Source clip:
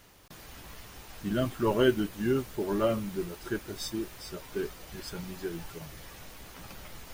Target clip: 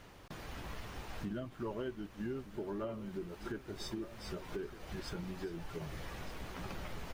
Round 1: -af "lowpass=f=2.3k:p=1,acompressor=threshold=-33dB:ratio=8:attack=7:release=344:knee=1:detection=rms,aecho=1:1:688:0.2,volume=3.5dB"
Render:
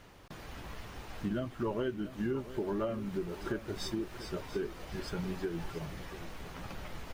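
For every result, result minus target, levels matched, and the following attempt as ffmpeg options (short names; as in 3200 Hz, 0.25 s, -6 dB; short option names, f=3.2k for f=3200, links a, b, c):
echo 0.528 s early; compressor: peak gain reduction -6 dB
-af "lowpass=f=2.3k:p=1,acompressor=threshold=-33dB:ratio=8:attack=7:release=344:knee=1:detection=rms,aecho=1:1:1216:0.2,volume=3.5dB"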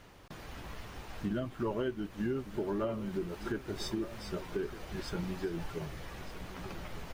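compressor: peak gain reduction -6 dB
-af "lowpass=f=2.3k:p=1,acompressor=threshold=-40dB:ratio=8:attack=7:release=344:knee=1:detection=rms,aecho=1:1:1216:0.2,volume=3.5dB"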